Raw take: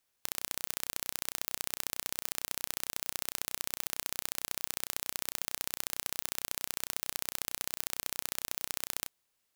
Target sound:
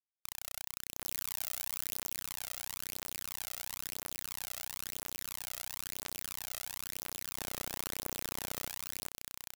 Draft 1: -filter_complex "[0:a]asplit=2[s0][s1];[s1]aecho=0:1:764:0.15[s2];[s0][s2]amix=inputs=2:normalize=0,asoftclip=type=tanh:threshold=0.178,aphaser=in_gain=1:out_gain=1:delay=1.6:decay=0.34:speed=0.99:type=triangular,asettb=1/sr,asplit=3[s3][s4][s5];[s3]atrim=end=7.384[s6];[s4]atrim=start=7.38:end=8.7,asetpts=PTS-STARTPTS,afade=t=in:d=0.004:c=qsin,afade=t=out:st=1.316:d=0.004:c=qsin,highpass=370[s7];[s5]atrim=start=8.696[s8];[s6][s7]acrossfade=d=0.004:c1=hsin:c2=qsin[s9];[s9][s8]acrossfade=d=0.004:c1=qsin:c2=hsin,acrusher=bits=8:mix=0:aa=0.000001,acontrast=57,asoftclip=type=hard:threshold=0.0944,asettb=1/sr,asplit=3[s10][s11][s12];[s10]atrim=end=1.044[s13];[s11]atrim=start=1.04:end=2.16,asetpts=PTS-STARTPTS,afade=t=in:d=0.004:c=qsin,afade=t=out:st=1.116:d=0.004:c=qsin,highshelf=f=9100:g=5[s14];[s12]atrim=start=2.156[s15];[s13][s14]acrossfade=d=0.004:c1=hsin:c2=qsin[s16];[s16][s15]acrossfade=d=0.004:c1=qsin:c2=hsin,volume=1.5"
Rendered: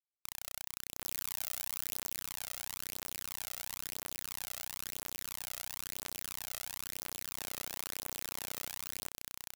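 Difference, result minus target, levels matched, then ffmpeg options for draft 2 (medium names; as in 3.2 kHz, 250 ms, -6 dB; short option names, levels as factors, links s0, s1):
saturation: distortion +7 dB
-filter_complex "[0:a]asplit=2[s0][s1];[s1]aecho=0:1:764:0.15[s2];[s0][s2]amix=inputs=2:normalize=0,asoftclip=type=tanh:threshold=0.398,aphaser=in_gain=1:out_gain=1:delay=1.6:decay=0.34:speed=0.99:type=triangular,asettb=1/sr,asplit=3[s3][s4][s5];[s3]atrim=end=7.384[s6];[s4]atrim=start=7.38:end=8.7,asetpts=PTS-STARTPTS,afade=t=in:d=0.004:c=qsin,afade=t=out:st=1.316:d=0.004:c=qsin,highpass=370[s7];[s5]atrim=start=8.696[s8];[s6][s7]acrossfade=d=0.004:c1=hsin:c2=qsin[s9];[s9][s8]acrossfade=d=0.004:c1=qsin:c2=hsin,acrusher=bits=8:mix=0:aa=0.000001,acontrast=57,asoftclip=type=hard:threshold=0.0944,asettb=1/sr,asplit=3[s10][s11][s12];[s10]atrim=end=1.044[s13];[s11]atrim=start=1.04:end=2.16,asetpts=PTS-STARTPTS,afade=t=in:d=0.004:c=qsin,afade=t=out:st=1.116:d=0.004:c=qsin,highshelf=f=9100:g=5[s14];[s12]atrim=start=2.156[s15];[s13][s14]acrossfade=d=0.004:c1=hsin:c2=qsin[s16];[s16][s15]acrossfade=d=0.004:c1=qsin:c2=hsin,volume=1.5"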